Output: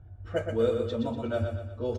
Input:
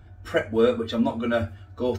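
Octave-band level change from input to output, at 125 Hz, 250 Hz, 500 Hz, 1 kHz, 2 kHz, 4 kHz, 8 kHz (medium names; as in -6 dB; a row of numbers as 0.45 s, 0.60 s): +1.0 dB, -7.5 dB, -4.5 dB, -8.0 dB, -11.0 dB, -9.0 dB, no reading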